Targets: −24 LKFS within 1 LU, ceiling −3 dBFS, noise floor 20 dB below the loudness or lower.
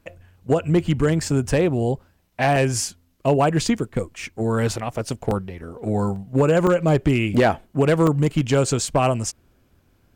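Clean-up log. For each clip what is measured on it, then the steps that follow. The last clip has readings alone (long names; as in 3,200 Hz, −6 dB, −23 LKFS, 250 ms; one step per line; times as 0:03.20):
share of clipped samples 0.5%; peaks flattened at −10.5 dBFS; number of dropouts 7; longest dropout 2.4 ms; integrated loudness −21.5 LKFS; sample peak −10.5 dBFS; target loudness −24.0 LKFS
→ clipped peaks rebuilt −10.5 dBFS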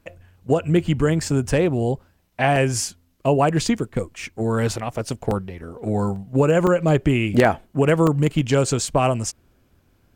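share of clipped samples 0.0%; number of dropouts 7; longest dropout 2.4 ms
→ repair the gap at 0:01.30/0:02.56/0:03.85/0:05.31/0:06.16/0:06.67/0:08.07, 2.4 ms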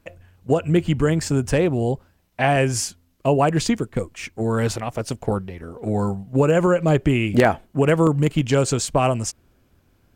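number of dropouts 0; integrated loudness −21.0 LKFS; sample peak −2.5 dBFS; target loudness −24.0 LKFS
→ level −3 dB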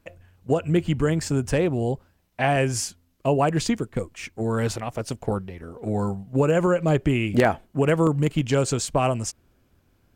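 integrated loudness −24.0 LKFS; sample peak −5.5 dBFS; background noise floor −65 dBFS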